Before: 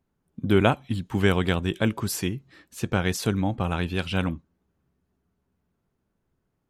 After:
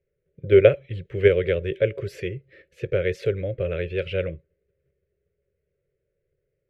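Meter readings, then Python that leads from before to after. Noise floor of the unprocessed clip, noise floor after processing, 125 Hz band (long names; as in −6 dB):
−77 dBFS, −78 dBFS, −2.0 dB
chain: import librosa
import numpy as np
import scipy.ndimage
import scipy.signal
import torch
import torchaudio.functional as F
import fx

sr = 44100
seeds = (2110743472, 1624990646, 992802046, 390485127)

p1 = fx.level_steps(x, sr, step_db=18)
p2 = x + (p1 * 10.0 ** (-2.0 / 20.0))
p3 = fx.curve_eq(p2, sr, hz=(150.0, 250.0, 390.0, 560.0, 840.0, 1400.0, 2100.0, 3800.0, 8900.0), db=(0, -23, 8, 13, -30, -7, 5, -10, -24))
y = p3 * 10.0 ** (-3.5 / 20.0)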